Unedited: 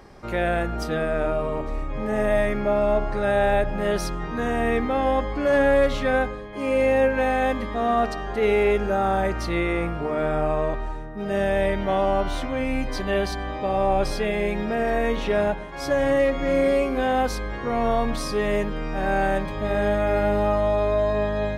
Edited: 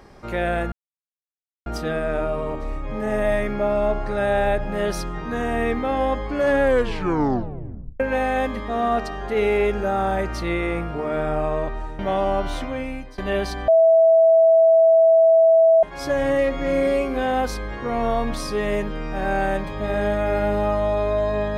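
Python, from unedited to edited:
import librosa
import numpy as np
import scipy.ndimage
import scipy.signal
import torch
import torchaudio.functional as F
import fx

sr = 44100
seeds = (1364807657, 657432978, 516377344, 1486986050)

y = fx.edit(x, sr, fx.insert_silence(at_s=0.72, length_s=0.94),
    fx.tape_stop(start_s=5.69, length_s=1.37),
    fx.cut(start_s=11.05, length_s=0.75),
    fx.fade_out_to(start_s=12.46, length_s=0.53, floor_db=-20.0),
    fx.bleep(start_s=13.49, length_s=2.15, hz=654.0, db=-10.5), tone=tone)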